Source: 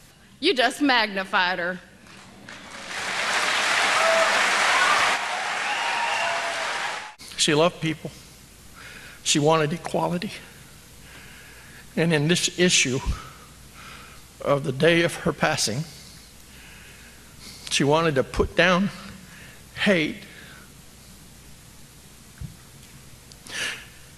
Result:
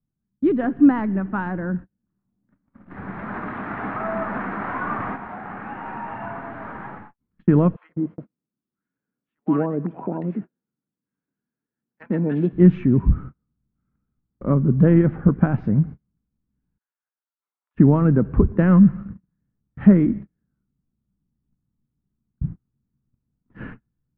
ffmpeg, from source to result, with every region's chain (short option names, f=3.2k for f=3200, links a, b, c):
-filter_complex "[0:a]asettb=1/sr,asplit=3[a][b][c];[a]atrim=end=7.764[d];[b]atrim=start=7.76:end=12.53,asetpts=PTS-STARTPTS,afade=t=in:d=0.004:c=qsin,afade=t=out:st=4.766:d=0.004:c=qsin,highpass=320,acrossover=split=920[e][f];[e]adelay=130[g];[g][f]amix=inputs=2:normalize=0,atrim=end_sample=210357[h];[c]atrim=start=12.526[i];[d][h]acrossfade=d=0.004:c1=hsin:c2=qsin[j];[j][i]acrossfade=d=0.004:c1=qsin:c2=hsin,asettb=1/sr,asplit=3[k][l][m];[k]atrim=end=16.784[n];[l]atrim=start=16.78:end=17.75,asetpts=PTS-STARTPTS,afade=t=in:d=0.004:c=qsin,afade=t=out:st=0.966:d=0.004:c=qsin,highpass=f=710:w=0.5412,highpass=f=710:w=1.3066,agate=range=-33dB:threshold=-47dB:ratio=3:release=100:detection=peak[o];[m]atrim=start=17.746[p];[n][o]acrossfade=d=0.004:c1=hsin:c2=qsin[q];[q][p]acrossfade=d=0.004:c1=qsin:c2=hsin,lowpass=f=1.4k:w=0.5412,lowpass=f=1.4k:w=1.3066,agate=range=-37dB:threshold=-39dB:ratio=16:detection=peak,lowshelf=f=370:t=q:w=1.5:g=13,volume=-3.5dB"